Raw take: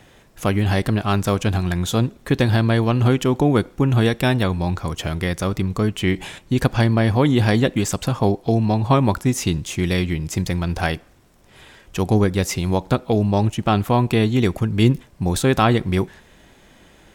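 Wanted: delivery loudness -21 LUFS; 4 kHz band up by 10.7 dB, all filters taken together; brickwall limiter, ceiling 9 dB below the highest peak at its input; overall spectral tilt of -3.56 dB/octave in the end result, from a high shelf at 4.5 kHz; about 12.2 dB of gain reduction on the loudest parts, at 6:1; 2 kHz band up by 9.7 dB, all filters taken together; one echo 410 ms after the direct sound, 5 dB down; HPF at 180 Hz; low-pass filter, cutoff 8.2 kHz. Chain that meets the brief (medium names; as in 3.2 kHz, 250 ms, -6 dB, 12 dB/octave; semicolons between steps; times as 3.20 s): high-pass 180 Hz; low-pass 8.2 kHz; peaking EQ 2 kHz +9 dB; peaking EQ 4 kHz +7.5 dB; treble shelf 4.5 kHz +6 dB; compression 6:1, threshold -23 dBFS; peak limiter -15.5 dBFS; delay 410 ms -5 dB; trim +7.5 dB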